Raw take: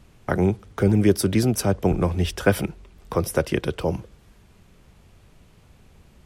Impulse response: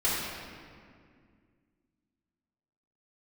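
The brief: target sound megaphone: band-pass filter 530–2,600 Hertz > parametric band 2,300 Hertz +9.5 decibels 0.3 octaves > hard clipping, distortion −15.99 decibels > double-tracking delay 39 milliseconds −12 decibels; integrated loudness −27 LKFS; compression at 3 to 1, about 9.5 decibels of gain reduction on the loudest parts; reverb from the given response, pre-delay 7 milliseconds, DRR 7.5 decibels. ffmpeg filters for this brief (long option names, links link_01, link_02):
-filter_complex "[0:a]acompressor=threshold=-25dB:ratio=3,asplit=2[link_01][link_02];[1:a]atrim=start_sample=2205,adelay=7[link_03];[link_02][link_03]afir=irnorm=-1:irlink=0,volume=-19dB[link_04];[link_01][link_04]amix=inputs=2:normalize=0,highpass=530,lowpass=2600,equalizer=frequency=2300:width_type=o:width=0.3:gain=9.5,asoftclip=type=hard:threshold=-22.5dB,asplit=2[link_05][link_06];[link_06]adelay=39,volume=-12dB[link_07];[link_05][link_07]amix=inputs=2:normalize=0,volume=8.5dB"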